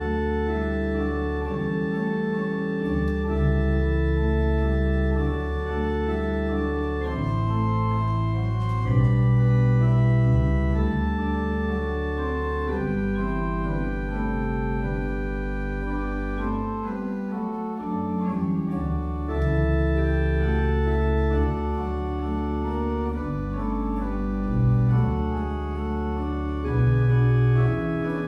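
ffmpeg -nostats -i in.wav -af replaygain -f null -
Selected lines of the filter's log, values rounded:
track_gain = +8.0 dB
track_peak = 0.243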